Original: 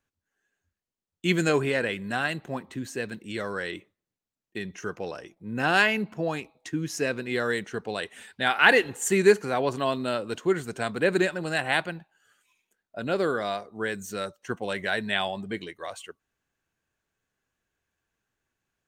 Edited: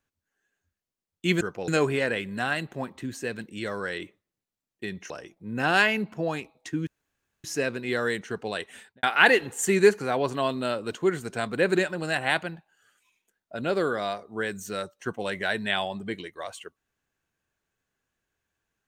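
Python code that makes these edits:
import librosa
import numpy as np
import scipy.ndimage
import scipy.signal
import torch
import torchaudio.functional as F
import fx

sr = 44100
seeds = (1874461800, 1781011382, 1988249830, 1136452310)

y = fx.studio_fade_out(x, sr, start_s=8.19, length_s=0.27)
y = fx.edit(y, sr, fx.move(start_s=4.83, length_s=0.27, to_s=1.41),
    fx.insert_room_tone(at_s=6.87, length_s=0.57), tone=tone)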